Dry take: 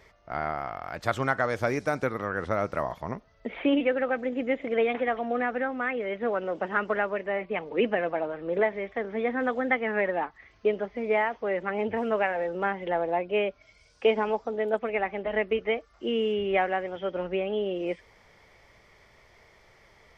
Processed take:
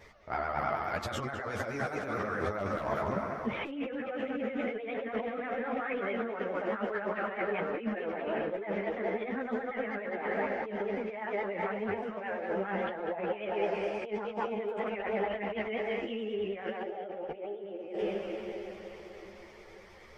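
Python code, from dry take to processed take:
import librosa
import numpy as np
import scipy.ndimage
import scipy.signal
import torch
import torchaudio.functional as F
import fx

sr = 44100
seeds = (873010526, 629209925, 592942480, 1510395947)

y = fx.echo_tape(x, sr, ms=197, feedback_pct=60, wet_db=-7.0, lp_hz=3400.0, drive_db=13.0, wow_cents=34)
y = fx.vibrato(y, sr, rate_hz=9.4, depth_cents=79.0)
y = fx.echo_diffused(y, sr, ms=470, feedback_pct=50, wet_db=-13)
y = fx.clip_hard(y, sr, threshold_db=-20.0, at=(2.58, 3.7))
y = fx.spec_box(y, sr, start_s=16.83, length_s=1.15, low_hz=330.0, high_hz=910.0, gain_db=8)
y = fx.over_compress(y, sr, threshold_db=-32.0, ratio=-1.0)
y = fx.ensemble(y, sr)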